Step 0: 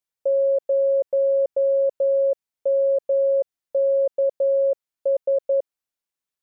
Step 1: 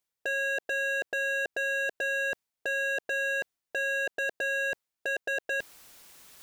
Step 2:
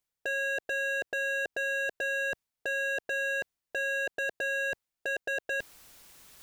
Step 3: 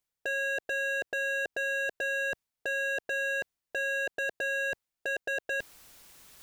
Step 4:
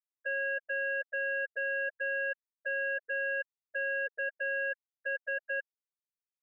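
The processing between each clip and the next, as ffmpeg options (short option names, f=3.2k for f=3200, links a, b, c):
-af "areverse,acompressor=mode=upward:threshold=-26dB:ratio=2.5,areverse,aeval=exprs='0.0562*(abs(mod(val(0)/0.0562+3,4)-2)-1)':c=same"
-af "lowshelf=f=120:g=8,volume=-1.5dB"
-af anull
-af "afftfilt=real='re*gte(hypot(re,im),0.112)':imag='im*gte(hypot(re,im),0.112)':win_size=1024:overlap=0.75,asuperstop=centerf=1100:order=4:qfactor=3,volume=-1dB"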